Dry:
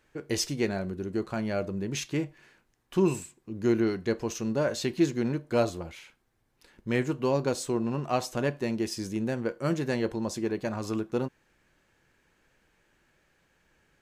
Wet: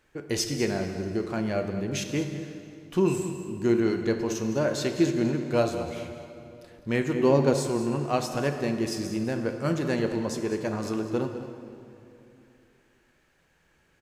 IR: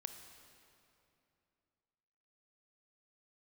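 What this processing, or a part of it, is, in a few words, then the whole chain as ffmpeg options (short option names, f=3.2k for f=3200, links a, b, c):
cave: -filter_complex "[0:a]aecho=1:1:204:0.2[a];[1:a]atrim=start_sample=2205[b];[a][b]afir=irnorm=-1:irlink=0,asettb=1/sr,asplit=3[c][d][e];[c]atrim=end=7.144[f];[d]atrim=start=7.14:end=7.67,asetpts=PTS-STARTPTS,afade=t=in:d=0.004:c=qsin,afade=t=out:st=0.526:d=0.004:c=qsin,equalizer=f=320:w=0.49:g=5[g];[e]atrim=start=7.666[h];[f][g]acrossfade=d=0.004:c1=hsin:c2=qsin[i];[i][h]acrossfade=d=0.004:c1=qsin:c2=hsin,volume=5dB"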